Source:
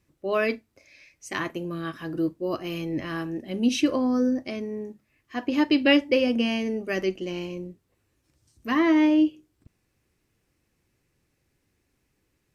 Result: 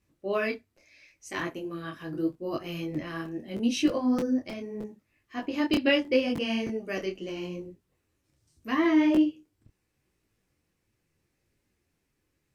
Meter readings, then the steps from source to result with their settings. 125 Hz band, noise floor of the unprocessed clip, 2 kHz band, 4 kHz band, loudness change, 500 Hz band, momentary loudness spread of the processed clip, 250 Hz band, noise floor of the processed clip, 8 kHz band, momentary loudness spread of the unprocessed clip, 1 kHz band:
-3.5 dB, -74 dBFS, -3.5 dB, -3.5 dB, -3.5 dB, -3.5 dB, 15 LU, -3.5 dB, -78 dBFS, -3.0 dB, 15 LU, -3.5 dB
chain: crackling interface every 0.31 s, samples 256, repeat, from 0.77 s; detune thickener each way 27 cents

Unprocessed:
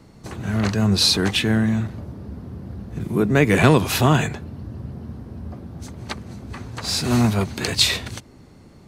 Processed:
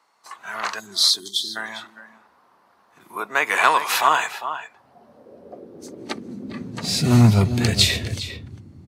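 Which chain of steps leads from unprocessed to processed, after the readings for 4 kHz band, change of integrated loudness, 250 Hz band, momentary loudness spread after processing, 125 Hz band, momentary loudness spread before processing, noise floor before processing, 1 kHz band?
+0.5 dB, -0.5 dB, -4.0 dB, 18 LU, -1.0 dB, 19 LU, -47 dBFS, +5.0 dB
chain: high-pass sweep 1 kHz -> 87 Hz, 4.60–7.65 s; time-frequency box 0.80–1.56 s, 430–3100 Hz -30 dB; echo from a far wall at 69 m, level -10 dB; spectral noise reduction 9 dB

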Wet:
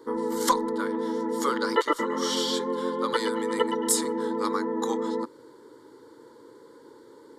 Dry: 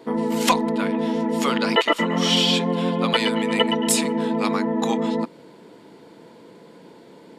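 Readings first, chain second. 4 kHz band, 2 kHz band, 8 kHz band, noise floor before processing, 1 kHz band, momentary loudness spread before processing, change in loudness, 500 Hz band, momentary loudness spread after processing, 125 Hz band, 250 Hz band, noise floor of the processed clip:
-10.5 dB, -8.0 dB, -2.5 dB, -47 dBFS, -3.5 dB, 5 LU, -6.0 dB, -3.0 dB, 5 LU, -17.5 dB, -8.0 dB, -52 dBFS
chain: static phaser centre 690 Hz, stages 6; trim -1.5 dB

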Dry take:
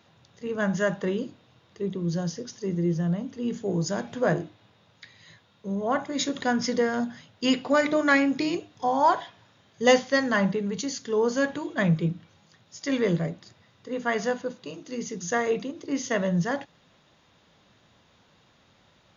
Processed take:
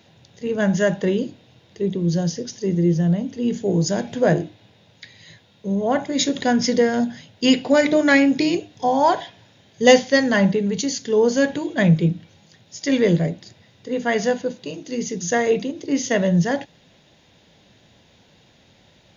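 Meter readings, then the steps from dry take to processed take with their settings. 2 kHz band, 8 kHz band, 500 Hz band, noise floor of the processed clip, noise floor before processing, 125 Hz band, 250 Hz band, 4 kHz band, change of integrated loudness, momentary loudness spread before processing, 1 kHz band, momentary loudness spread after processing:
+4.5 dB, no reading, +7.0 dB, -56 dBFS, -62 dBFS, +7.5 dB, +7.5 dB, +7.0 dB, +6.5 dB, 12 LU, +3.5 dB, 11 LU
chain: peaking EQ 1.2 kHz -12.5 dB 0.57 oct; trim +7.5 dB

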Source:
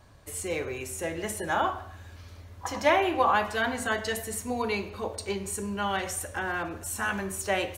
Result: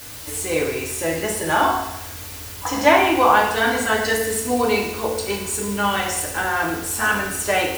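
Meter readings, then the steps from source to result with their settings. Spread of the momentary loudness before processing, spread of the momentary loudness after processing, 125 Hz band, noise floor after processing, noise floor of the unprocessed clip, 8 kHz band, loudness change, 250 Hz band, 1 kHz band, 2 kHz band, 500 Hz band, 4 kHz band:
14 LU, 12 LU, +6.5 dB, -35 dBFS, -48 dBFS, +10.0 dB, +9.0 dB, +9.0 dB, +9.0 dB, +9.5 dB, +9.0 dB, +10.0 dB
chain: in parallel at -6 dB: word length cut 6-bit, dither triangular; on the sum: FDN reverb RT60 0.85 s, low-frequency decay 1.1×, high-frequency decay 1×, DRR -0.5 dB; trim +2.5 dB

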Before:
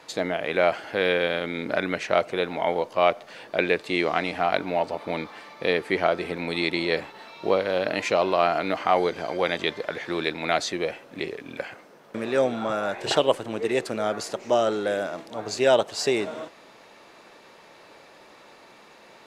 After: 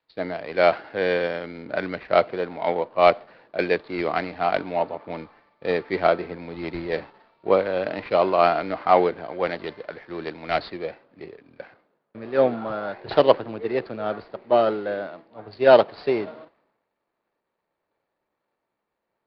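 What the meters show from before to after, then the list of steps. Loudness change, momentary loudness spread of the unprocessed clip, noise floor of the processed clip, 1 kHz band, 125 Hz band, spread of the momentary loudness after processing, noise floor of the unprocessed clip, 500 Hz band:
+2.0 dB, 11 LU, -81 dBFS, +2.5 dB, 0.0 dB, 16 LU, -51 dBFS, +2.5 dB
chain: median filter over 15 samples; elliptic low-pass 4.5 kHz, stop band 40 dB; three bands expanded up and down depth 100%; trim +1.5 dB

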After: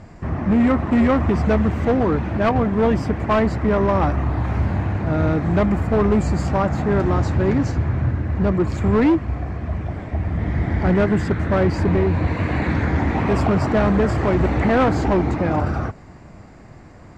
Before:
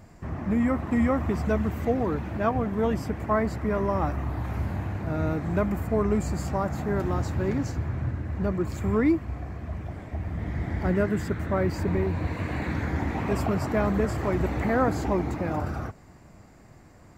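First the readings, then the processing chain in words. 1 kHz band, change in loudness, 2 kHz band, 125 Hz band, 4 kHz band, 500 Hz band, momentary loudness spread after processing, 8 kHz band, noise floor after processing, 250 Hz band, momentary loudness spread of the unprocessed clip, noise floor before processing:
+7.5 dB, +8.0 dB, +7.5 dB, +8.5 dB, +8.5 dB, +7.5 dB, 6 LU, no reading, -42 dBFS, +8.0 dB, 7 LU, -51 dBFS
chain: overload inside the chain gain 21 dB; distance through air 84 m; trim +9 dB

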